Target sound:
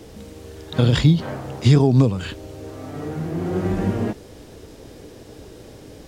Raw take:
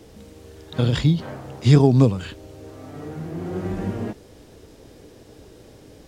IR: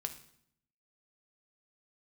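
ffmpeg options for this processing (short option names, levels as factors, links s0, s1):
-af "alimiter=limit=0.299:level=0:latency=1:release=272,volume=1.78"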